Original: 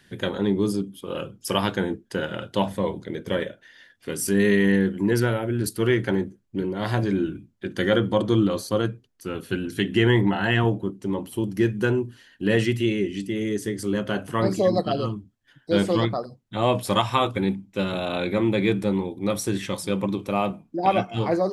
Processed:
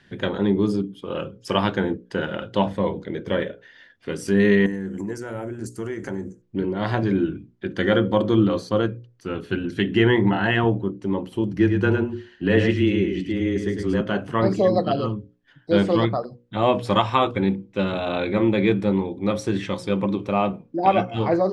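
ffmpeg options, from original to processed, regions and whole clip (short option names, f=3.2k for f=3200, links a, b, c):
-filter_complex "[0:a]asettb=1/sr,asplit=3[a][b][c];[a]atrim=end=4.664[d];[b]atrim=start=4.66:end=6.42,asetpts=PTS-STARTPTS,afade=t=in:d=0.004:c=qsin,afade=t=out:st=1.756:d=0.004:c=qsin,highshelf=f=5.1k:t=q:w=3:g=12,acompressor=threshold=-27dB:ratio=8:attack=3.2:release=140:knee=1:detection=peak[e];[c]atrim=start=6.416[f];[d][e]acrossfade=d=0.004:c1=hsin:c2=qsin[g];[g][f]acrossfade=d=0.004:c1=qsin:c2=hsin,asettb=1/sr,asplit=3[h][i][j];[h]atrim=end=11.524[k];[i]atrim=start=11.52:end=14.01,asetpts=PTS-STARTPTS,afade=t=in:d=0.004:c=qsin,afade=t=out:st=2.486:d=0.004:c=qsin,highshelf=f=8.5k:g=-6.5,afreqshift=-14,aecho=1:1:106:0.531,atrim=end_sample=109809[l];[j]atrim=start=14.006[m];[k][l]acrossfade=d=0.004:c1=hsin:c2=qsin[n];[n][m]acrossfade=d=0.004:c1=qsin:c2=hsin,lowpass=6.6k,highshelf=f=4.4k:g=-9.5,bandreject=f=60:t=h:w=6,bandreject=f=120:t=h:w=6,bandreject=f=180:t=h:w=6,bandreject=f=240:t=h:w=6,bandreject=f=300:t=h:w=6,bandreject=f=360:t=h:w=6,bandreject=f=420:t=h:w=6,bandreject=f=480:t=h:w=6,bandreject=f=540:t=h:w=6,volume=3dB"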